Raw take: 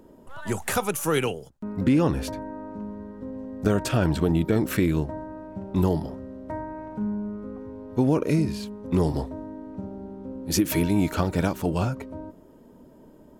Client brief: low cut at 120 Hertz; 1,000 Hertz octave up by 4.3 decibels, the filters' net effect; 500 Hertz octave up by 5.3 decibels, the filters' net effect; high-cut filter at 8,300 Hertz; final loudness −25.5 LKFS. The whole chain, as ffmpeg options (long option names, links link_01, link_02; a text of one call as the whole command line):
ffmpeg -i in.wav -af "highpass=120,lowpass=8300,equalizer=frequency=500:width_type=o:gain=6,equalizer=frequency=1000:width_type=o:gain=3.5,volume=-1dB" out.wav